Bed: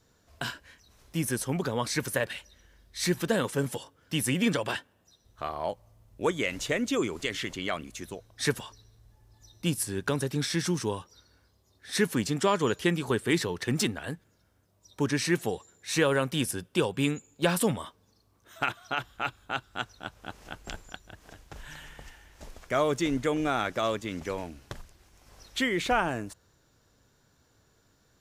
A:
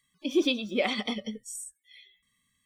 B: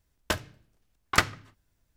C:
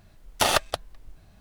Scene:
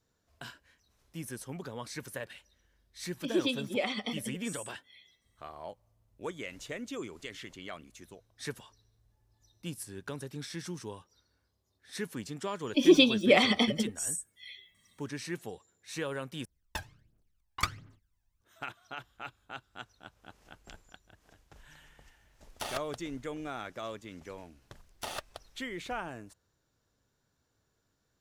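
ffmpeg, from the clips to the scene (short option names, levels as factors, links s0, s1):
-filter_complex "[1:a]asplit=2[s0][s1];[3:a]asplit=2[s2][s3];[0:a]volume=0.266[s4];[s1]acontrast=31[s5];[2:a]aphaser=in_gain=1:out_gain=1:delay=1.3:decay=0.71:speed=1.4:type=triangular[s6];[s4]asplit=2[s7][s8];[s7]atrim=end=16.454[s9];[s6]atrim=end=1.96,asetpts=PTS-STARTPTS,volume=0.237[s10];[s8]atrim=start=18.406[s11];[s0]atrim=end=2.65,asetpts=PTS-STARTPTS,volume=0.596,afade=t=in:d=0.004:c=hsin,afade=t=out:st=2.646:d=0.004:c=hsin,adelay=2990[s12];[s5]atrim=end=2.65,asetpts=PTS-STARTPTS,afade=t=in:d=0.004:c=hsin,afade=t=out:st=2.646:d=0.004:c=hsin,adelay=552132S[s13];[s2]atrim=end=1.4,asetpts=PTS-STARTPTS,volume=0.15,afade=t=in:d=0.004:c=hsin,afade=t=out:st=1.396:d=0.004:c=hsin,adelay=22200[s14];[s3]atrim=end=1.4,asetpts=PTS-STARTPTS,volume=0.133,afade=t=in:d=0.004:c=hsin,afade=t=out:st=1.396:d=0.004:c=hsin,adelay=24620[s15];[s9][s10]acrossfade=d=0.004:c1=hsin:c2=hsin[s16];[s16][s11]acrossfade=d=0.004:c1=hsin:c2=hsin[s17];[s17][s12][s13][s14][s15]amix=inputs=5:normalize=0"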